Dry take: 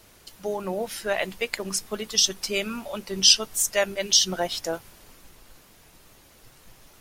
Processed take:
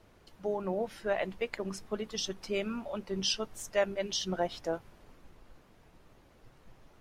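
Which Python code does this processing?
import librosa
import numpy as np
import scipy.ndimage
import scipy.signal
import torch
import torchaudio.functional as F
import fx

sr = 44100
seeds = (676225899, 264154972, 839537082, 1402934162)

y = fx.lowpass(x, sr, hz=1100.0, slope=6)
y = y * 10.0 ** (-3.0 / 20.0)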